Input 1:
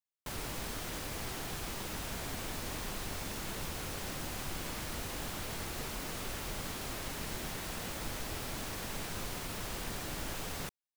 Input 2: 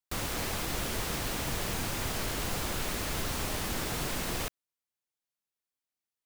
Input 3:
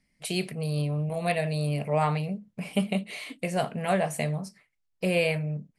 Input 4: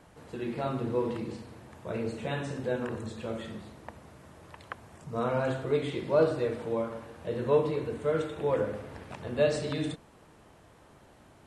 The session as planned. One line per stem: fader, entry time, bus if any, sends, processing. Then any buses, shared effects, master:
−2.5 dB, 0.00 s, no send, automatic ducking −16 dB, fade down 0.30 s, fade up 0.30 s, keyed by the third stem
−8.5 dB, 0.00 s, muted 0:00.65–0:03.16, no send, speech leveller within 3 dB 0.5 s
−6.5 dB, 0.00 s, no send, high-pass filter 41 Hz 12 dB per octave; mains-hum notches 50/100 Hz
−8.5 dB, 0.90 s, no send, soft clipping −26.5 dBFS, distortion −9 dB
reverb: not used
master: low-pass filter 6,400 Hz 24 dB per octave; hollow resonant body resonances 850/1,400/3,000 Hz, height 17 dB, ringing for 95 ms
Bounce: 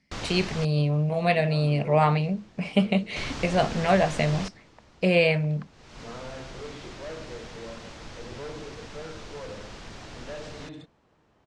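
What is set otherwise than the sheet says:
stem 2 −8.5 dB → −1.0 dB
stem 3 −6.5 dB → +4.5 dB
master: missing hollow resonant body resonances 850/1,400/3,000 Hz, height 17 dB, ringing for 95 ms

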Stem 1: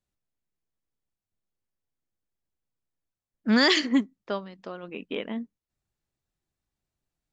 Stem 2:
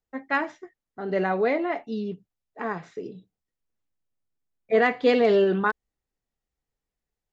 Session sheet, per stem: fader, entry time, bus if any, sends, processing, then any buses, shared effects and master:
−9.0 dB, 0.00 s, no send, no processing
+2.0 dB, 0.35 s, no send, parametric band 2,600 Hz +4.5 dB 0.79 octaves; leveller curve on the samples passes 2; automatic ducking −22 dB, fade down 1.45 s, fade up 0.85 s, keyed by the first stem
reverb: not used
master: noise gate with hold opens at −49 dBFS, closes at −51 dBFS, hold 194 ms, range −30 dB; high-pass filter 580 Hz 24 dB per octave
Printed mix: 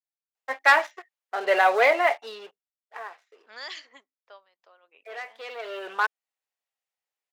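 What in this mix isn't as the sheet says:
stem 1 −9.0 dB → −16.0 dB
master: missing noise gate with hold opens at −49 dBFS, closes at −51 dBFS, hold 194 ms, range −30 dB

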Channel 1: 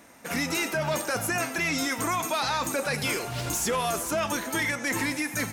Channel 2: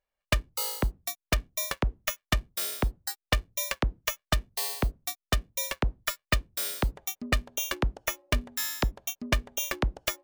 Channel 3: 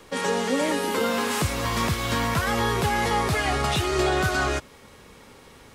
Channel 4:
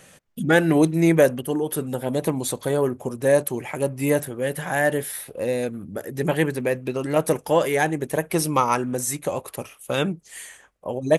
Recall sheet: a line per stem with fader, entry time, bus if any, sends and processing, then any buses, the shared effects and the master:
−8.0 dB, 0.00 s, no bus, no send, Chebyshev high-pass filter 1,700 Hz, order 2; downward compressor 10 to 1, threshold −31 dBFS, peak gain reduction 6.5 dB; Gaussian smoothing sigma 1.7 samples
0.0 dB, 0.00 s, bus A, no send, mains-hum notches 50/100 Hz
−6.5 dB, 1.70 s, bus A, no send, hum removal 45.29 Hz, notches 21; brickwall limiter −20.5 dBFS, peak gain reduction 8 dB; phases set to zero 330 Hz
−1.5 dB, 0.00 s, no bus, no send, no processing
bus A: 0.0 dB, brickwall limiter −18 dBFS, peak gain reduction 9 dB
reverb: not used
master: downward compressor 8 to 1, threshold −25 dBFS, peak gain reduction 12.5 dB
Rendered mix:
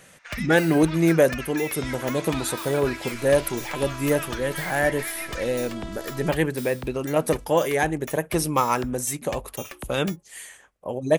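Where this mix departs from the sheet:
stem 1 −8.0 dB → +0.5 dB
stem 2 0.0 dB → −9.0 dB
master: missing downward compressor 8 to 1, threshold −25 dBFS, peak gain reduction 12.5 dB

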